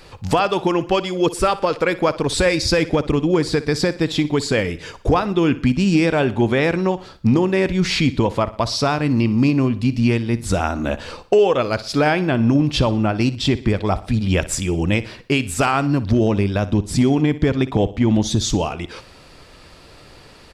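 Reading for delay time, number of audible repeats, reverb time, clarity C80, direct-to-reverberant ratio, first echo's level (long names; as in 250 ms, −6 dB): 60 ms, 3, no reverb audible, no reverb audible, no reverb audible, −16.5 dB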